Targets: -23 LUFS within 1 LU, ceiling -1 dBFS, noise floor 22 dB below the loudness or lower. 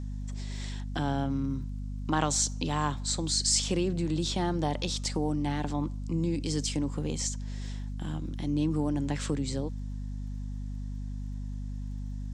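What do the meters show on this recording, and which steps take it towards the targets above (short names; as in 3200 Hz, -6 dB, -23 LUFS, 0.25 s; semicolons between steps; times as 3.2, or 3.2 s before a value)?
ticks 23/s; hum 50 Hz; harmonics up to 250 Hz; hum level -33 dBFS; loudness -31.5 LUFS; peak -12.0 dBFS; loudness target -23.0 LUFS
-> de-click; de-hum 50 Hz, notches 5; gain +8.5 dB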